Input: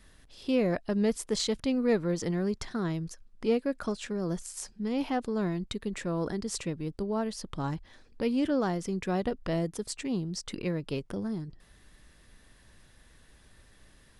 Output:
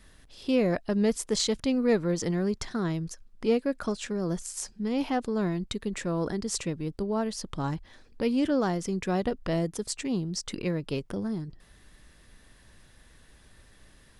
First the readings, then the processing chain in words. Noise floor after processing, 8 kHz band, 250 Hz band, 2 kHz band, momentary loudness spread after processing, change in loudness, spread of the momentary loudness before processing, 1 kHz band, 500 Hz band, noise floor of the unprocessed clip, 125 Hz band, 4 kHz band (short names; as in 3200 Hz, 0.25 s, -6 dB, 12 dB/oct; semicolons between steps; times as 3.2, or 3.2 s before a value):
-57 dBFS, +4.5 dB, +2.0 dB, +2.0 dB, 8 LU, +2.0 dB, 8 LU, +2.0 dB, +2.0 dB, -59 dBFS, +2.0 dB, +3.0 dB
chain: dynamic EQ 6600 Hz, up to +3 dB, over -52 dBFS, Q 1.4; gain +2 dB